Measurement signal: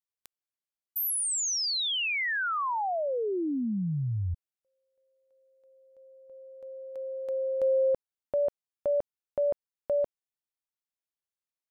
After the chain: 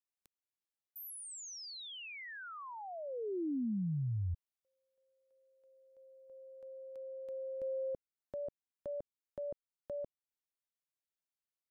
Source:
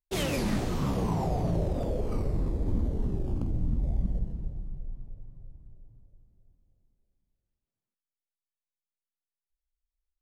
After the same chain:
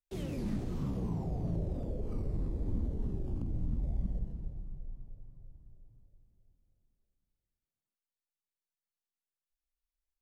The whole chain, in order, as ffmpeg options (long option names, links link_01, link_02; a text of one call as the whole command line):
ffmpeg -i in.wav -filter_complex "[0:a]acrossover=split=410[link_01][link_02];[link_02]acompressor=threshold=-45dB:ratio=3:attack=0.23:release=416:knee=2.83:detection=peak[link_03];[link_01][link_03]amix=inputs=2:normalize=0,volume=-5.5dB" out.wav